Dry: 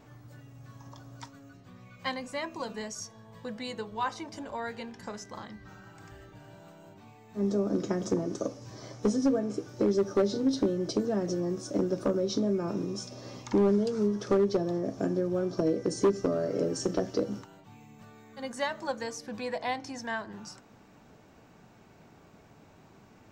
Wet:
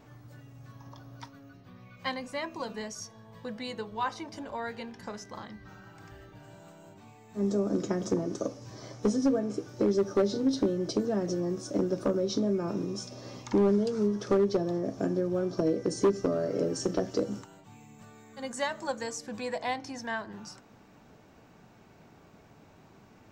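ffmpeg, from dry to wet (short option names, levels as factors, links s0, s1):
-af "asetnsamples=n=441:p=0,asendcmd='0.72 equalizer g -14.5;1.97 equalizer g -5;6.43 equalizer g 6.5;7.87 equalizer g -0.5;17.11 equalizer g 8.5;19.74 equalizer g -2',equalizer=f=7500:t=o:w=0.34:g=-2.5"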